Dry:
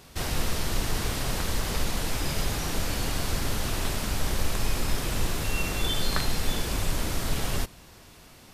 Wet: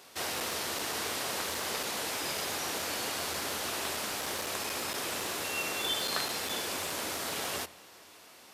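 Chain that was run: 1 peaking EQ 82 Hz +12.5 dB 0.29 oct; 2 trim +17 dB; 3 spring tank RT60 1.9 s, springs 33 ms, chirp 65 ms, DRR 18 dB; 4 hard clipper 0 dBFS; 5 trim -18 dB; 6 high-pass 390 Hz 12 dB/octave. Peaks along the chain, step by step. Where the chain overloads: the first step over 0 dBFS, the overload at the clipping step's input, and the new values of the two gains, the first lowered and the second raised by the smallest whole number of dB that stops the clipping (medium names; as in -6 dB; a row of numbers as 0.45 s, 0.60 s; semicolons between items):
-8.5 dBFS, +8.5 dBFS, +9.0 dBFS, 0.0 dBFS, -18.0 dBFS, -16.0 dBFS; step 2, 9.0 dB; step 2 +8 dB, step 5 -9 dB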